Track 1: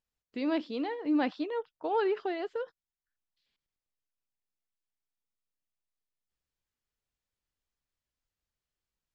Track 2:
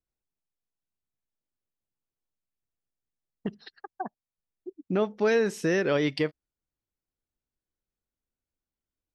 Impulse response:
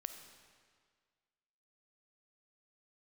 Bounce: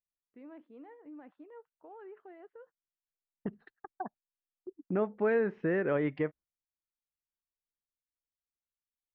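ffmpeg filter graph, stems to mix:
-filter_complex "[0:a]alimiter=level_in=2dB:limit=-24dB:level=0:latency=1:release=62,volume=-2dB,volume=-17dB[link_01];[1:a]agate=range=-18dB:threshold=-47dB:ratio=16:detection=peak,volume=-4.5dB[link_02];[link_01][link_02]amix=inputs=2:normalize=0,lowpass=frequency=2000:width=0.5412,lowpass=frequency=2000:width=1.3066"

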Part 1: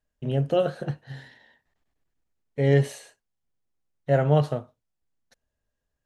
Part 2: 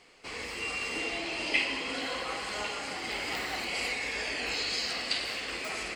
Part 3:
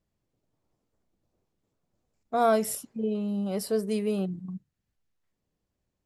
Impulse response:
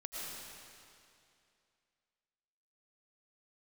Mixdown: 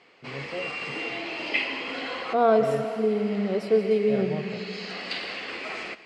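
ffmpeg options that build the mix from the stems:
-filter_complex "[0:a]volume=-13dB[link_01];[1:a]volume=1.5dB,asplit=2[link_02][link_03];[link_03]volume=-13dB[link_04];[2:a]equalizer=frequency=390:width=1.6:gain=7,volume=-2dB,asplit=3[link_05][link_06][link_07];[link_06]volume=-4dB[link_08];[link_07]apad=whole_len=262584[link_09];[link_02][link_09]sidechaincompress=threshold=-42dB:ratio=8:attack=16:release=660[link_10];[3:a]atrim=start_sample=2205[link_11];[link_04][link_08]amix=inputs=2:normalize=0[link_12];[link_12][link_11]afir=irnorm=-1:irlink=0[link_13];[link_01][link_10][link_05][link_13]amix=inputs=4:normalize=0,highpass=140,lowpass=3500"

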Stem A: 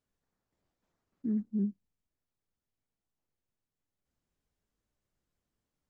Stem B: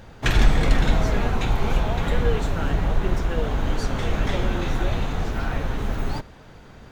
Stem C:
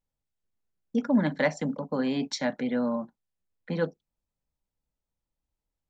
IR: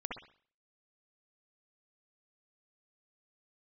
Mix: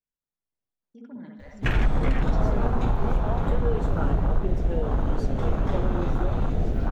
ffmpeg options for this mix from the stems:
-filter_complex "[0:a]volume=-15.5dB[link_01];[1:a]adelay=1400,volume=1dB,asplit=2[link_02][link_03];[link_03]volume=-21.5dB[link_04];[2:a]alimiter=limit=-20dB:level=0:latency=1:release=23,volume=-16dB,asplit=2[link_05][link_06];[link_06]volume=-4dB[link_07];[link_02][link_05]amix=inputs=2:normalize=0,afwtdn=0.0501,alimiter=limit=-14dB:level=0:latency=1:release=183,volume=0dB[link_08];[3:a]atrim=start_sample=2205[link_09];[link_04][link_07]amix=inputs=2:normalize=0[link_10];[link_10][link_09]afir=irnorm=-1:irlink=0[link_11];[link_01][link_08][link_11]amix=inputs=3:normalize=0"

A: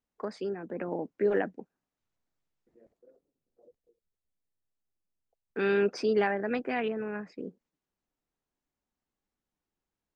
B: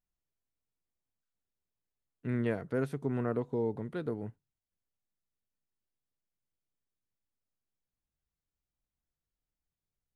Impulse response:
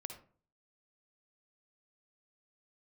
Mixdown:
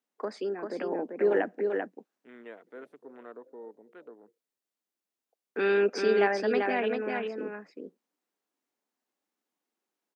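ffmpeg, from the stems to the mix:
-filter_complex "[0:a]volume=1.5dB,asplit=3[link_01][link_02][link_03];[link_02]volume=-22dB[link_04];[link_03]volume=-4dB[link_05];[1:a]afwtdn=0.00501,highpass=frequency=590:poles=1,volume=-8dB[link_06];[2:a]atrim=start_sample=2205[link_07];[link_04][link_07]afir=irnorm=-1:irlink=0[link_08];[link_05]aecho=0:1:391:1[link_09];[link_01][link_06][link_08][link_09]amix=inputs=4:normalize=0,highpass=frequency=240:width=0.5412,highpass=frequency=240:width=1.3066"

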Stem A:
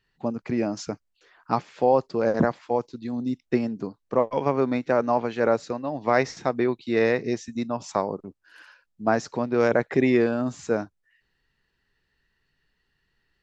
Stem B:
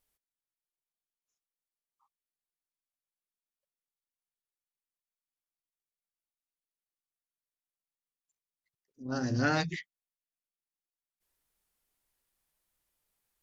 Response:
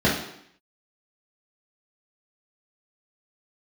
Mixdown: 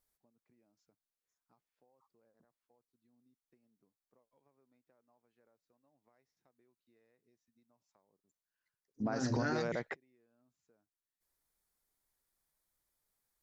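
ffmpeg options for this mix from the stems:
-filter_complex "[0:a]acompressor=threshold=-27dB:ratio=6,volume=0dB[link_01];[1:a]equalizer=frequency=2800:width=3.7:gain=-9.5,volume=-2.5dB,asplit=2[link_02][link_03];[link_03]apad=whole_len=592259[link_04];[link_01][link_04]sidechaingate=range=-43dB:threshold=-58dB:ratio=16:detection=peak[link_05];[link_05][link_02]amix=inputs=2:normalize=0,alimiter=level_in=1dB:limit=-24dB:level=0:latency=1:release=79,volume=-1dB"

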